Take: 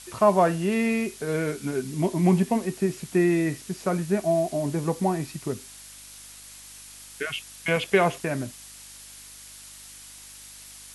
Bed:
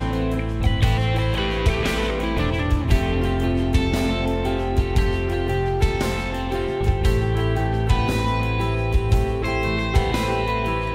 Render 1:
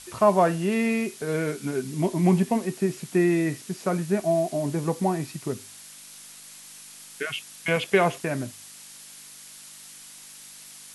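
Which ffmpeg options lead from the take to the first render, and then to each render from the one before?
-af "bandreject=f=50:t=h:w=4,bandreject=f=100:t=h:w=4"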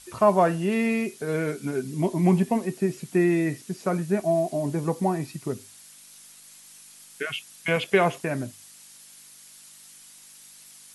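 -af "afftdn=nr=6:nf=-46"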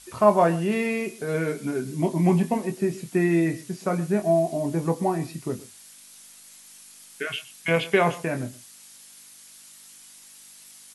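-filter_complex "[0:a]asplit=2[s0][s1];[s1]adelay=24,volume=0.398[s2];[s0][s2]amix=inputs=2:normalize=0,aecho=1:1:122:0.106"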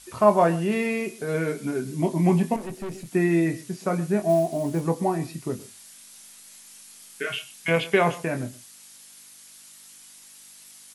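-filter_complex "[0:a]asettb=1/sr,asplit=3[s0][s1][s2];[s0]atrim=end=2.564[s3];[s1]atrim=start=2.56:end=3.11,asetpts=PTS-STARTPTS,afade=t=in:d=0.004:c=qsin,afade=t=out:st=0.546:d=0.004:c=qsin,aeval=exprs='(tanh(31.6*val(0)+0.4)-tanh(0.4))/31.6':c=same[s4];[s2]atrim=start=3.106[s5];[s3][s4]acrossfade=d=0.004:c1=hsin:c2=qsin[s6];[s6][s5]acrossfade=d=0.004:c1=qsin:c2=hsin,asplit=3[s7][s8][s9];[s7]afade=t=out:st=4.28:d=0.02[s10];[s8]acrusher=bits=7:mode=log:mix=0:aa=0.000001,afade=t=in:st=4.28:d=0.02,afade=t=out:st=4.81:d=0.02[s11];[s9]afade=t=in:st=4.81:d=0.02[s12];[s10][s11][s12]amix=inputs=3:normalize=0,asettb=1/sr,asplit=3[s13][s14][s15];[s13]atrim=end=5.574[s16];[s14]atrim=start=5.57:end=7.7,asetpts=PTS-STARTPTS,afade=t=in:d=0.004:c=qsin,afade=t=out:st=2.126:d=0.004:c=qsin,asplit=2[s17][s18];[s18]adelay=29,volume=0.447[s19];[s17][s19]amix=inputs=2:normalize=0,atrim=end_sample=93933[s20];[s15]atrim=start=7.696[s21];[s16][s20]acrossfade=d=0.004:c1=hsin:c2=qsin[s22];[s22][s21]acrossfade=d=0.004:c1=qsin:c2=hsin"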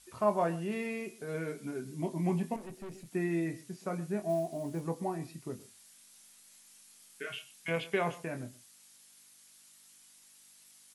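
-af "volume=0.282"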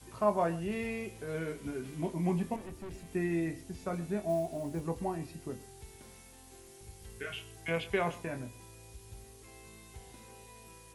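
-filter_complex "[1:a]volume=0.0251[s0];[0:a][s0]amix=inputs=2:normalize=0"

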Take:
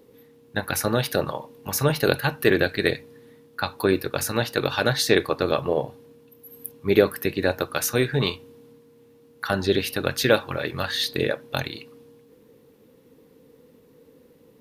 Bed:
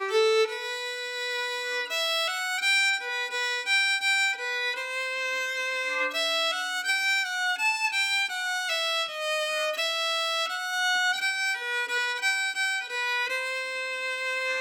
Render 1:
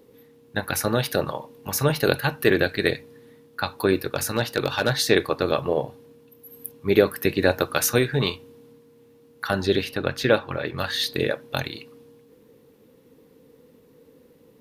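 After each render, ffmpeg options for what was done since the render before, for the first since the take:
-filter_complex "[0:a]asettb=1/sr,asplit=3[s0][s1][s2];[s0]atrim=end=4.034[s3];[s1]atrim=start=4.03:end=4.92,asetpts=PTS-STARTPTS,afade=t=in:d=0.004:c=qsin,afade=t=out:st=0.886:d=0.004:c=qsin,asoftclip=type=hard:threshold=0.266[s4];[s2]atrim=start=4.916[s5];[s3][s4]acrossfade=d=0.004:c1=hsin:c2=qsin[s6];[s6][s5]acrossfade=d=0.004:c1=qsin:c2=hsin,asettb=1/sr,asplit=3[s7][s8][s9];[s7]atrim=end=9.844[s10];[s8]atrim=start=9.84:end=10.78,asetpts=PTS-STARTPTS,afade=t=in:d=0.004:c=qsin,afade=t=out:st=0.936:d=0.004:c=qsin,lowpass=f=3000:p=1[s11];[s9]atrim=start=10.776[s12];[s10][s11]acrossfade=d=0.004:c1=hsin:c2=qsin[s13];[s13][s12]acrossfade=d=0.004:c1=qsin:c2=hsin,asplit=3[s14][s15][s16];[s14]atrim=end=7.232[s17];[s15]atrim=start=7.228:end=7.992,asetpts=PTS-STARTPTS,volume=1.41[s18];[s16]atrim=start=7.988[s19];[s17][s18]acrossfade=d=0.004:c1=hsin:c2=hsin[s20];[s20][s19]acrossfade=d=0.004:c1=hsin:c2=hsin"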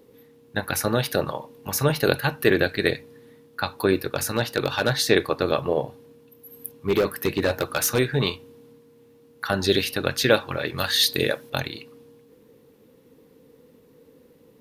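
-filter_complex "[0:a]asettb=1/sr,asplit=3[s0][s1][s2];[s0]atrim=end=6.804[s3];[s1]atrim=start=6.8:end=7.99,asetpts=PTS-STARTPTS,afade=t=in:d=0.004:c=qsin,afade=t=out:st=1.186:d=0.004:c=qsin,asoftclip=type=hard:threshold=0.168[s4];[s2]atrim=start=7.986[s5];[s3][s4]acrossfade=d=0.004:c1=hsin:c2=qsin[s6];[s6][s5]acrossfade=d=0.004:c1=qsin:c2=hsin,asettb=1/sr,asplit=3[s7][s8][s9];[s7]atrim=end=9.624[s10];[s8]atrim=start=9.62:end=11.5,asetpts=PTS-STARTPTS,afade=t=in:d=0.004:c=qsin,afade=t=out:st=1.876:d=0.004:c=qsin,highshelf=f=3800:g=11[s11];[s9]atrim=start=11.496[s12];[s10][s11]acrossfade=d=0.004:c1=hsin:c2=qsin[s13];[s13][s12]acrossfade=d=0.004:c1=qsin:c2=hsin"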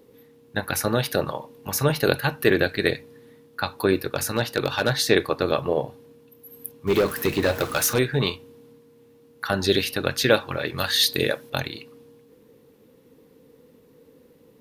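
-filter_complex "[0:a]asettb=1/sr,asplit=3[s0][s1][s2];[s0]atrim=end=6.874[s3];[s1]atrim=start=6.87:end=7.94,asetpts=PTS-STARTPTS,afade=t=in:d=0.004:c=qsin,afade=t=out:st=1.066:d=0.004:c=qsin,aeval=exprs='val(0)+0.5*0.0266*sgn(val(0))':c=same[s4];[s2]atrim=start=7.936[s5];[s3][s4]acrossfade=d=0.004:c1=hsin:c2=qsin[s6];[s6][s5]acrossfade=d=0.004:c1=qsin:c2=hsin"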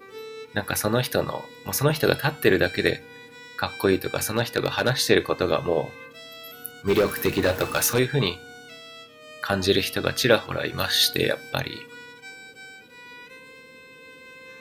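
-filter_complex "[1:a]volume=0.15[s0];[0:a][s0]amix=inputs=2:normalize=0"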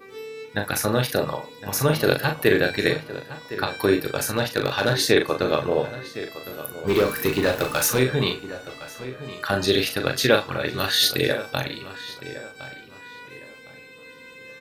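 -filter_complex "[0:a]asplit=2[s0][s1];[s1]adelay=39,volume=0.501[s2];[s0][s2]amix=inputs=2:normalize=0,asplit=2[s3][s4];[s4]adelay=1061,lowpass=f=2900:p=1,volume=0.2,asplit=2[s5][s6];[s6]adelay=1061,lowpass=f=2900:p=1,volume=0.31,asplit=2[s7][s8];[s8]adelay=1061,lowpass=f=2900:p=1,volume=0.31[s9];[s3][s5][s7][s9]amix=inputs=4:normalize=0"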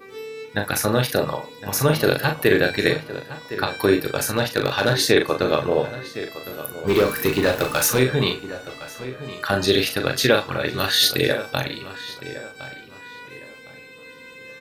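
-af "volume=1.26,alimiter=limit=0.708:level=0:latency=1"

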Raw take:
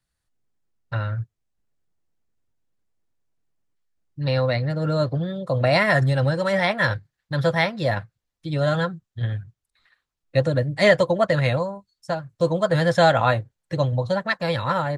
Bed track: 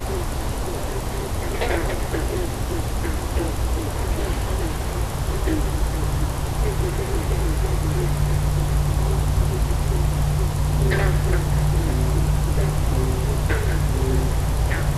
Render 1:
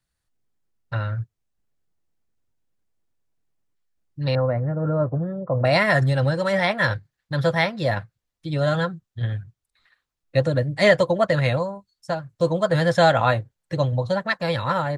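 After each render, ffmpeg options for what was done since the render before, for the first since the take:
-filter_complex "[0:a]asettb=1/sr,asplit=3[s0][s1][s2];[s0]atrim=end=4.354[s3];[s1]atrim=start=4.35:end=5.65,asetpts=PTS-STARTPTS,afade=t=in:d=0.004:c=qsin,afade=t=out:st=1.296:d=0.004:c=qsin,lowpass=f=1400:w=0.5412,lowpass=f=1400:w=1.3066[s4];[s2]atrim=start=5.646[s5];[s3][s4]acrossfade=d=0.004:c1=hsin:c2=qsin[s6];[s6][s5]acrossfade=d=0.004:c1=qsin:c2=hsin"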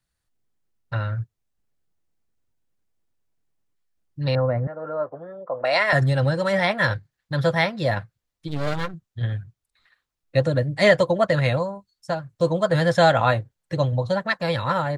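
-filter_complex "[0:a]asettb=1/sr,asplit=3[s0][s1][s2];[s0]atrim=end=4.674[s3];[s1]atrim=start=4.67:end=5.93,asetpts=PTS-STARTPTS,afade=t=in:d=0.004:c=qsin,afade=t=out:st=1.256:d=0.004:c=qsin,highpass=550,lowpass=7700[s4];[s2]atrim=start=5.926[s5];[s3][s4]acrossfade=d=0.004:c1=hsin:c2=qsin[s6];[s6][s5]acrossfade=d=0.004:c1=qsin:c2=hsin,asplit=3[s7][s8][s9];[s7]afade=t=out:st=8.47:d=0.02[s10];[s8]aeval=exprs='max(val(0),0)':c=same,afade=t=in:st=8.47:d=0.02,afade=t=out:st=8.93:d=0.02[s11];[s9]afade=t=in:st=8.93:d=0.02[s12];[s10][s11][s12]amix=inputs=3:normalize=0"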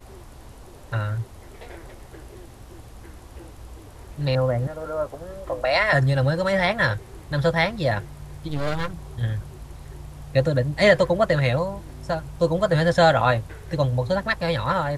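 -filter_complex "[1:a]volume=0.119[s0];[0:a][s0]amix=inputs=2:normalize=0"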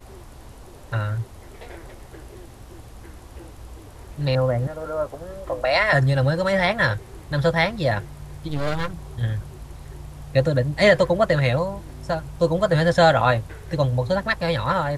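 -af "volume=1.12,alimiter=limit=0.708:level=0:latency=1"

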